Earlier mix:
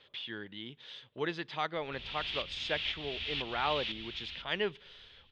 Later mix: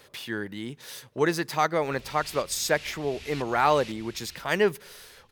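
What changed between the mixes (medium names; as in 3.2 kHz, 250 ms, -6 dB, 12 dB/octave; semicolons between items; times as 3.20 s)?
background -10.5 dB; master: remove four-pole ladder low-pass 3.6 kHz, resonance 70%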